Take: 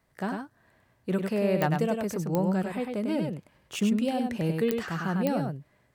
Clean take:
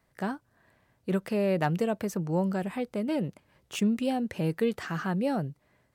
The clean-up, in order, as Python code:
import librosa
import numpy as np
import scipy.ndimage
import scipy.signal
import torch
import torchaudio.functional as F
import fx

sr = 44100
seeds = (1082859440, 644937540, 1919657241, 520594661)

y = fx.fix_declick_ar(x, sr, threshold=10.0)
y = fx.fix_echo_inverse(y, sr, delay_ms=99, level_db=-4.5)